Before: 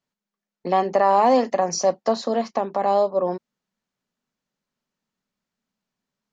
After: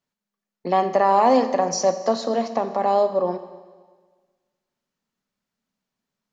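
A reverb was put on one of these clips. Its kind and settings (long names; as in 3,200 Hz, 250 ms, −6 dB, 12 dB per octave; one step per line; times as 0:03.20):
four-comb reverb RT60 1.5 s, combs from 27 ms, DRR 10.5 dB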